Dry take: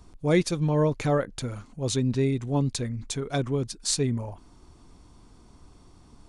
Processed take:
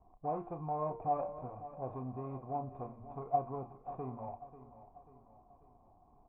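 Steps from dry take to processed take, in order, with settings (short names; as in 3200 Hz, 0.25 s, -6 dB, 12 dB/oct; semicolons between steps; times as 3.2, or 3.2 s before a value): median filter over 41 samples; de-hum 115.5 Hz, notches 33; limiter -22 dBFS, peak gain reduction 9.5 dB; vocal tract filter a; air absorption 200 m; doubler 31 ms -11 dB; feedback echo 0.54 s, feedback 48%, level -14.5 dB; gain +12.5 dB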